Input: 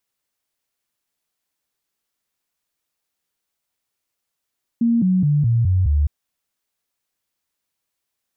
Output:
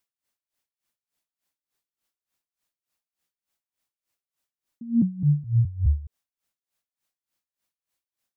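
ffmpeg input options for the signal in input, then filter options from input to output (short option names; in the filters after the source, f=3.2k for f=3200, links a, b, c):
-f lavfi -i "aevalsrc='0.211*clip(min(mod(t,0.21),0.21-mod(t,0.21))/0.005,0,1)*sin(2*PI*233*pow(2,-floor(t/0.21)/3)*mod(t,0.21))':d=1.26:s=44100"
-af "bandreject=f=440:w=14,aeval=exprs='val(0)*pow(10,-21*(0.5-0.5*cos(2*PI*3.4*n/s))/20)':c=same"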